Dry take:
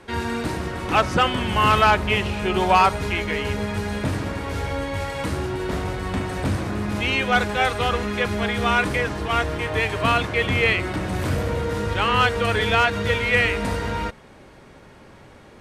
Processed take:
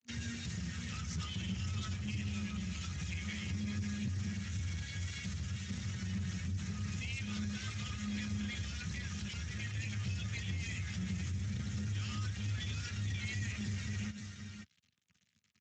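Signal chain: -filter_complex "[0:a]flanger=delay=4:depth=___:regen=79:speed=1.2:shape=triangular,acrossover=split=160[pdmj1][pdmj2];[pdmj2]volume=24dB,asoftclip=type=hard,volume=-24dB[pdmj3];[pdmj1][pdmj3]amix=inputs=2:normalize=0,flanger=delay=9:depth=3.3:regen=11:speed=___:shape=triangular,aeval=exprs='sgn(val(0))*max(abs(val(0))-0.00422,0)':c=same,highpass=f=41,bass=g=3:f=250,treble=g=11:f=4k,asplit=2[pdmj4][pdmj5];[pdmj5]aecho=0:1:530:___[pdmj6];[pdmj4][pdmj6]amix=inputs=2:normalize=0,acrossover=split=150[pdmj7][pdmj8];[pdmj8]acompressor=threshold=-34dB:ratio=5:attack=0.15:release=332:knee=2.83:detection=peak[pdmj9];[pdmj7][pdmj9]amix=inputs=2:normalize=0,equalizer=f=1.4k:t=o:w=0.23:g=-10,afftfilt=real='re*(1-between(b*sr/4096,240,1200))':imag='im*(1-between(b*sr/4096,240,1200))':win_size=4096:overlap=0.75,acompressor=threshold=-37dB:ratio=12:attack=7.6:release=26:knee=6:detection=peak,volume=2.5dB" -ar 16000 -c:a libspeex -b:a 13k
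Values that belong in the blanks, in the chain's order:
3.4, 0.51, 0.211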